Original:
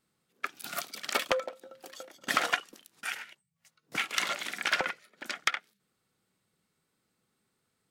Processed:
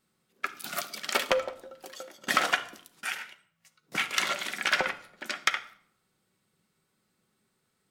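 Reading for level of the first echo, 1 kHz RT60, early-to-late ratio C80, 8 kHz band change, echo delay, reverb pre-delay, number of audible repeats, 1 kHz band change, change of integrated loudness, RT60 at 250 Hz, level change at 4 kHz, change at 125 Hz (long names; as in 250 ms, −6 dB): no echo audible, 0.60 s, 18.5 dB, +2.5 dB, no echo audible, 5 ms, no echo audible, +2.5 dB, +2.5 dB, 0.85 s, +2.5 dB, +3.5 dB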